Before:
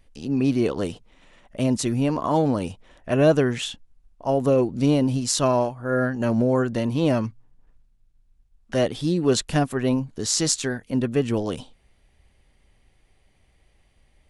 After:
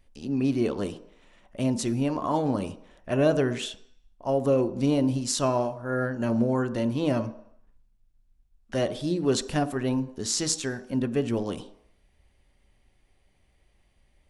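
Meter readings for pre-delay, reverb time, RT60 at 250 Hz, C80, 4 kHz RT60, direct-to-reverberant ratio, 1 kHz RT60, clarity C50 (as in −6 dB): 3 ms, 0.70 s, 0.55 s, 18.0 dB, 0.70 s, 11.0 dB, 0.75 s, 16.0 dB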